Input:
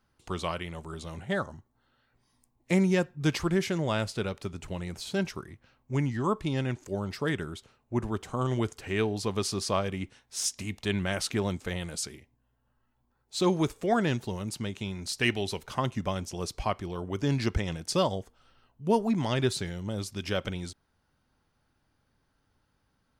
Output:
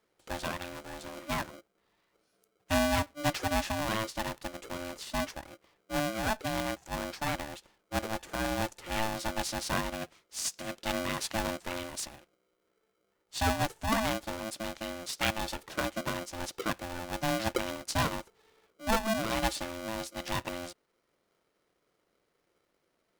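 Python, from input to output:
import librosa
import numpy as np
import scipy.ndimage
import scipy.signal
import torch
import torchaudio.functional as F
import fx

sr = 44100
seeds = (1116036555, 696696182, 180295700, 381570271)

y = x * np.sign(np.sin(2.0 * np.pi * 440.0 * np.arange(len(x)) / sr))
y = y * 10.0 ** (-3.5 / 20.0)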